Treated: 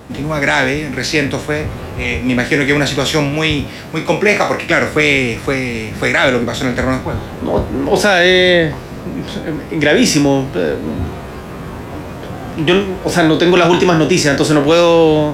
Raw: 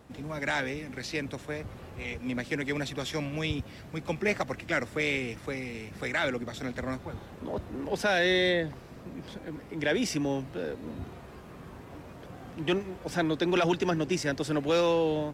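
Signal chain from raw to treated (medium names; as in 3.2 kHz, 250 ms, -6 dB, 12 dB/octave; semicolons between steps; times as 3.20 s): spectral sustain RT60 0.34 s; 3.34–4.70 s: bass shelf 120 Hz -11 dB; loudness maximiser +18.5 dB; trim -1 dB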